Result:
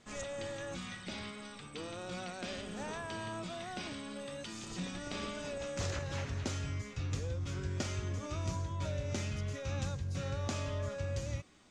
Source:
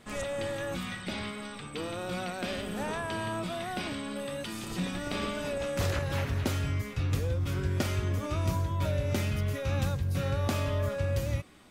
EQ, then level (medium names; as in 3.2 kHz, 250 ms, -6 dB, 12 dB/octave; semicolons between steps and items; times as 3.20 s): four-pole ladder low-pass 7.7 kHz, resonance 50%; +2.0 dB